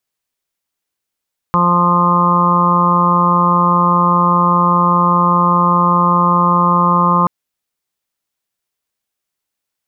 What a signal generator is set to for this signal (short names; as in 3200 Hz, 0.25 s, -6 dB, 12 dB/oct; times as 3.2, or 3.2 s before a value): steady additive tone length 5.73 s, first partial 175 Hz, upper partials -10.5/-8/-16.5/-5.5/2.5/-0.5 dB, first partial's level -15 dB